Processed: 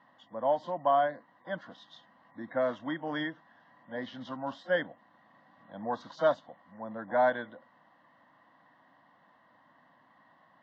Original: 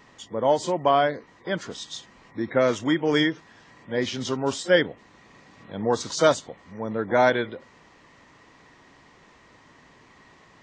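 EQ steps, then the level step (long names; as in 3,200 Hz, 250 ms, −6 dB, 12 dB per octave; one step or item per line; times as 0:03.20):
loudspeaker in its box 300–2,800 Hz, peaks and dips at 360 Hz −3 dB, 900 Hz −6 dB, 1,300 Hz −10 dB
phaser with its sweep stopped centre 1,000 Hz, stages 4
0.0 dB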